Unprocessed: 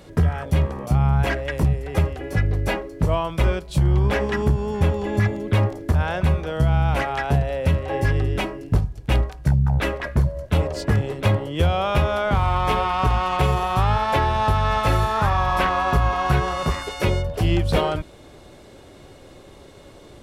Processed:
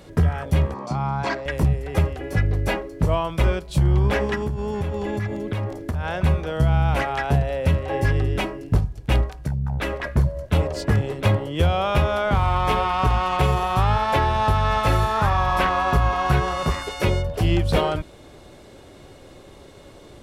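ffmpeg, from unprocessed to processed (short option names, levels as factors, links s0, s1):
-filter_complex "[0:a]asettb=1/sr,asplit=3[s0][s1][s2];[s0]atrim=end=0.744[s3];[s1]atrim=start=0.74:end=1.46,asetpts=PTS-STARTPTS,afade=t=in:d=0.004:c=qsin,afade=t=out:st=0.716:d=0.004:c=qsin,highpass=190,equalizer=f=470:t=q:w=4:g=-6,equalizer=f=1000:t=q:w=4:g=7,equalizer=f=1800:t=q:w=4:g=-4,equalizer=f=2900:t=q:w=4:g=-7,equalizer=f=4500:t=q:w=4:g=7,lowpass=f=7500:w=0.5412,lowpass=f=7500:w=1.3066[s4];[s2]atrim=start=1.456[s5];[s3][s4]acrossfade=d=0.004:c1=hsin:c2=qsin[s6];[s6][s5]acrossfade=d=0.004:c1=qsin:c2=hsin,asettb=1/sr,asplit=3[s7][s8][s9];[s7]atrim=end=4.344[s10];[s8]atrim=start=4.34:end=6.21,asetpts=PTS-STARTPTS,afade=t=in:d=0.004:c=qsin,afade=t=out:st=1.866:d=0.004:c=qsin,acompressor=threshold=0.0891:ratio=10:attack=3.2:release=140:knee=1:detection=peak[s11];[s9]atrim=start=6.206[s12];[s10][s11]acrossfade=d=0.004:c1=hsin:c2=qsin[s13];[s13][s12]acrossfade=d=0.004:c1=qsin:c2=hsin,asettb=1/sr,asplit=3[s14][s15][s16];[s14]atrim=end=9.374[s17];[s15]atrim=start=9.37:end=10.09,asetpts=PTS-STARTPTS,afade=t=in:d=0.004:c=qsin,afade=t=out:st=0.716:d=0.004:c=qsin,acompressor=threshold=0.1:ratio=10:attack=3.2:release=140:knee=1:detection=peak[s18];[s16]atrim=start=10.086[s19];[s17][s18]acrossfade=d=0.004:c1=hsin:c2=qsin[s20];[s20][s19]acrossfade=d=0.004:c1=qsin:c2=hsin"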